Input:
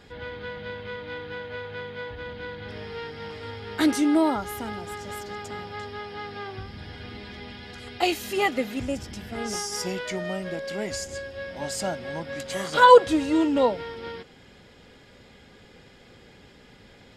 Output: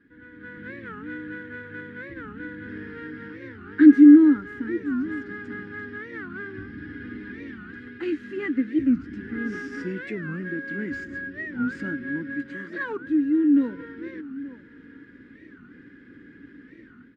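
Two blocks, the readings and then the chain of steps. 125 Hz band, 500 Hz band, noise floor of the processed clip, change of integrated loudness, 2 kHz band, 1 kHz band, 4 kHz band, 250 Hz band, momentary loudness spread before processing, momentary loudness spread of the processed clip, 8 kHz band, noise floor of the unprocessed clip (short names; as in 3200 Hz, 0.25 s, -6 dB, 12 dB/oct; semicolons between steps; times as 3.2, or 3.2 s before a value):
-1.5 dB, -8.5 dB, -50 dBFS, +4.5 dB, -0.5 dB, -18.5 dB, under -15 dB, +9.0 dB, 17 LU, 18 LU, under -25 dB, -52 dBFS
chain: CVSD 64 kbps; AGC gain up to 12 dB; double band-pass 690 Hz, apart 2.5 oct; tilt -3 dB/oct; outdoor echo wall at 150 m, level -17 dB; dynamic EQ 870 Hz, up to -4 dB, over -41 dBFS, Q 1.3; record warp 45 rpm, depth 250 cents; gain -1 dB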